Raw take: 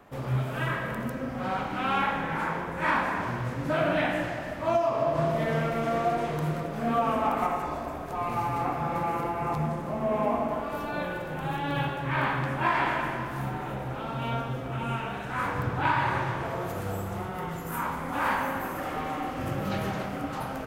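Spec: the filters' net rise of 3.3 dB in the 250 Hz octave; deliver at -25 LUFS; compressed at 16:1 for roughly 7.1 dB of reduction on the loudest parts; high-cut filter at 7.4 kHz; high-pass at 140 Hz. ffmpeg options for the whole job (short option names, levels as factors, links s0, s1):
-af "highpass=140,lowpass=7400,equalizer=f=250:t=o:g=5,acompressor=threshold=0.0447:ratio=16,volume=2.37"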